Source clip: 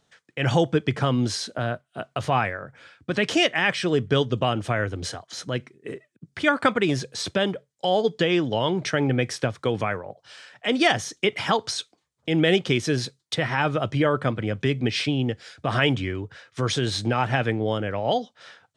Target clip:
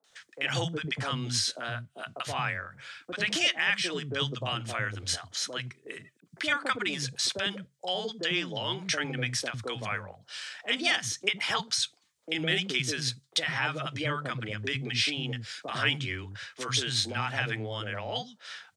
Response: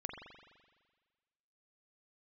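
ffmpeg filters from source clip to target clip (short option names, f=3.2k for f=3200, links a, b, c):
-filter_complex "[0:a]acrossover=split=230[a][b];[b]acompressor=threshold=-44dB:ratio=1.5[c];[a][c]amix=inputs=2:normalize=0,tiltshelf=f=770:g=-8.5,acrossover=split=230|750[d][e][f];[f]adelay=40[g];[d]adelay=100[h];[h][e][g]amix=inputs=3:normalize=0"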